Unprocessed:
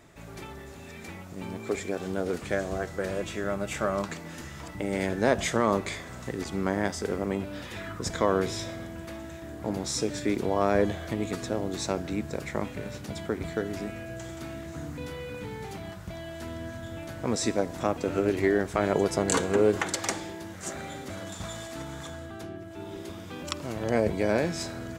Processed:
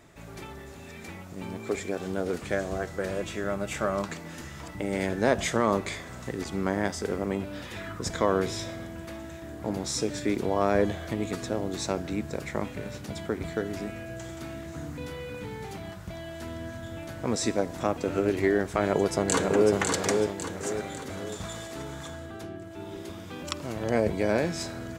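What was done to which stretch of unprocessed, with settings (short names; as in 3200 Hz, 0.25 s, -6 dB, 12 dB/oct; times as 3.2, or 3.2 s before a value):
18.84–19.71 echo throw 0.55 s, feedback 45%, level -4 dB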